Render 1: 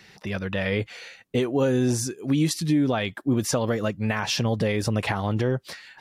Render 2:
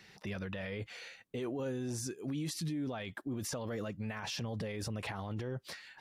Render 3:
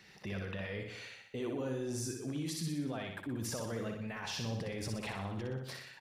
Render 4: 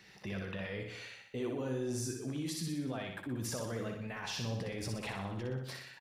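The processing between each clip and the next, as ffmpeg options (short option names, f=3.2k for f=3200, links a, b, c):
-af "alimiter=limit=-23.5dB:level=0:latency=1:release=26,volume=-7dB"
-af "aecho=1:1:61|122|183|244|305|366|427:0.596|0.328|0.18|0.0991|0.0545|0.03|0.0165,volume=-1.5dB"
-filter_complex "[0:a]asplit=2[a][b];[b]adelay=16,volume=-12dB[c];[a][c]amix=inputs=2:normalize=0"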